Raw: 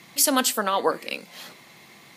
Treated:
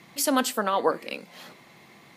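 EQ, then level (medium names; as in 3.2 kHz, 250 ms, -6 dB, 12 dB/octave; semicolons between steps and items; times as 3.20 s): treble shelf 2.4 kHz -8 dB; 0.0 dB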